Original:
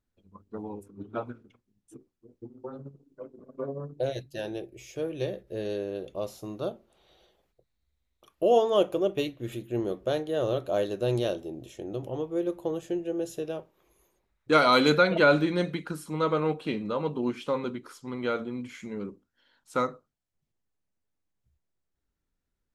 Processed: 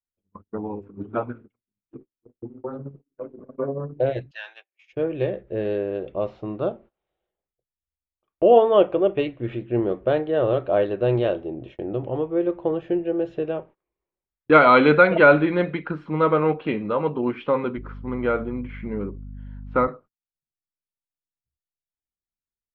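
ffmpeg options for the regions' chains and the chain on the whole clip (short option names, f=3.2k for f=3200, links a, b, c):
-filter_complex "[0:a]asettb=1/sr,asplit=3[a][b][c];[a]atrim=end=4.314[d];[b]atrim=start=4.31:end=4.93,asetpts=PTS-STARTPTS,afade=t=in:d=0.004:c=qsin,afade=t=out:st=0.616:d=0.004:c=qsin,highpass=f=1.1k:w=0.5412,highpass=f=1.1k:w=1.3066,equalizer=f=8.5k:w=0.57:g=10.5,asplit=2[e][f];[f]adelay=14,volume=-12dB[g];[e][g]amix=inputs=2:normalize=0,atrim=end_sample=27342[h];[c]atrim=start=4.926[i];[d][h]acrossfade=d=0.004:c1=hsin:c2=qsin[j];[j][i]acrossfade=d=0.004:c1=qsin:c2=hsin,asettb=1/sr,asplit=3[k][l][m];[k]atrim=end=17.774[n];[l]atrim=start=17.77:end=19.88,asetpts=PTS-STARTPTS,afade=t=in:d=0.004:c=qsin,afade=t=out:st=2.106:d=0.004:c=qsin,aemphasis=mode=reproduction:type=75kf,aeval=exprs='val(0)+0.00708*(sin(2*PI*50*n/s)+sin(2*PI*2*50*n/s)/2+sin(2*PI*3*50*n/s)/3+sin(2*PI*4*50*n/s)/4+sin(2*PI*5*50*n/s)/5)':c=same[o];[m]atrim=start=19.876[p];[n][o]acrossfade=d=0.004:c1=hsin:c2=qsin[q];[q][p]acrossfade=d=0.004:c1=qsin:c2=hsin,lowpass=f=2.6k:w=0.5412,lowpass=f=2.6k:w=1.3066,agate=range=-26dB:threshold=-51dB:ratio=16:detection=peak,adynamicequalizer=threshold=0.0112:dfrequency=200:dqfactor=0.98:tfrequency=200:tqfactor=0.98:attack=5:release=100:ratio=0.375:range=2.5:mode=cutabove:tftype=bell,volume=7.5dB"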